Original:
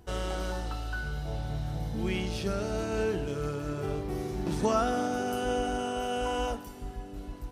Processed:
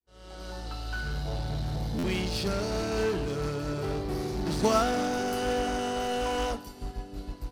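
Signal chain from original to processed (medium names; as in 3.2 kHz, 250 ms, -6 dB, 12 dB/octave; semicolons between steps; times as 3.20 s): fade-in on the opening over 1.18 s; peaking EQ 4.5 kHz +9.5 dB 0.42 oct; in parallel at -3.5 dB: wavefolder -32.5 dBFS; on the sum: buffer glitch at 1.98 s, samples 512, times 4; upward expansion 1.5:1, over -49 dBFS; trim +3 dB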